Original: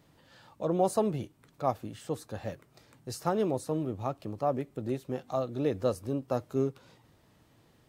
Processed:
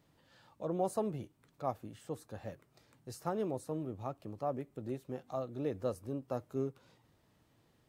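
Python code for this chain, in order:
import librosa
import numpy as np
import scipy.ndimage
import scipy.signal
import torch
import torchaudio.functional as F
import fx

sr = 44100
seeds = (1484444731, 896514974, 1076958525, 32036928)

y = fx.dynamic_eq(x, sr, hz=4200.0, q=0.89, threshold_db=-55.0, ratio=4.0, max_db=-4)
y = F.gain(torch.from_numpy(y), -7.0).numpy()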